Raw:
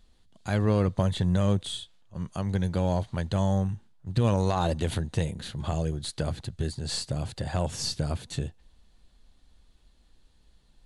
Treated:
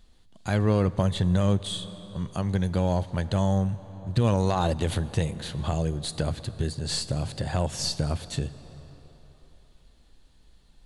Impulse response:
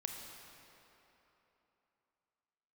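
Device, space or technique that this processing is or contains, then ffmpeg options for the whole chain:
ducked reverb: -filter_complex "[0:a]asplit=3[a][b][c];[1:a]atrim=start_sample=2205[d];[b][d]afir=irnorm=-1:irlink=0[e];[c]apad=whole_len=478843[f];[e][f]sidechaincompress=threshold=-28dB:ratio=4:attack=9.9:release=607,volume=-4.5dB[g];[a][g]amix=inputs=2:normalize=0"

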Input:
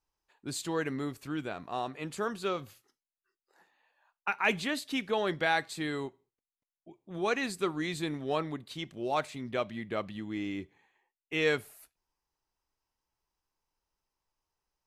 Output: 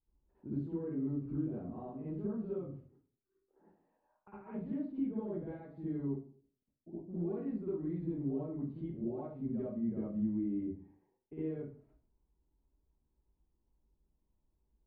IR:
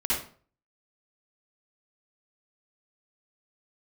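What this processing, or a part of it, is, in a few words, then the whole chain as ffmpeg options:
television next door: -filter_complex "[0:a]acompressor=threshold=-45dB:ratio=4,lowpass=330[a];[1:a]atrim=start_sample=2205[b];[a][b]afir=irnorm=-1:irlink=0,volume=2.5dB"

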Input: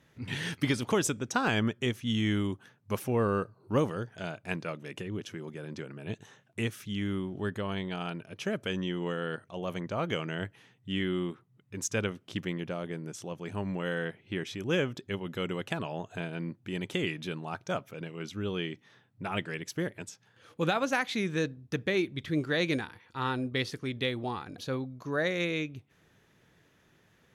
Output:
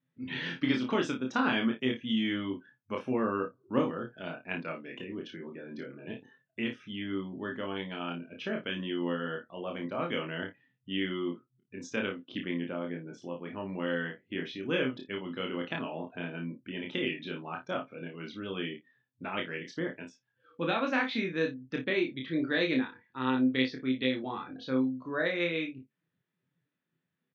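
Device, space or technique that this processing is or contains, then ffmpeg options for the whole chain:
kitchen radio: -filter_complex "[0:a]afftdn=nr=22:nf=-50,highpass=220,equalizer=f=260:t=q:w=4:g=6,equalizer=f=420:t=q:w=4:g=-3,equalizer=f=750:t=q:w=4:g=-4,lowpass=f=4.3k:w=0.5412,lowpass=f=4.3k:w=1.3066,asplit=2[a][b];[b]adelay=23,volume=-6dB[c];[a][c]amix=inputs=2:normalize=0,aecho=1:1:31|58:0.596|0.168,volume=-2dB"

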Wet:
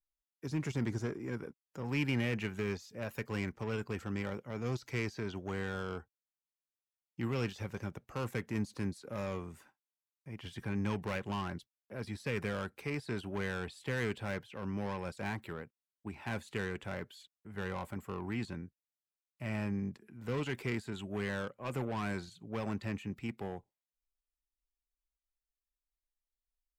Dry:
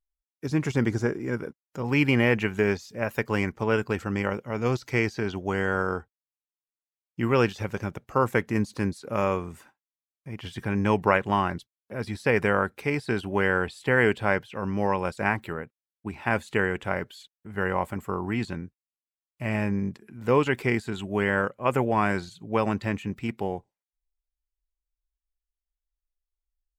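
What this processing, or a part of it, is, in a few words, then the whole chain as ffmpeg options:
one-band saturation: -filter_complex "[0:a]acrossover=split=240|2500[a][b][c];[b]asoftclip=type=tanh:threshold=-28.5dB[d];[a][d][c]amix=inputs=3:normalize=0,volume=-8dB"

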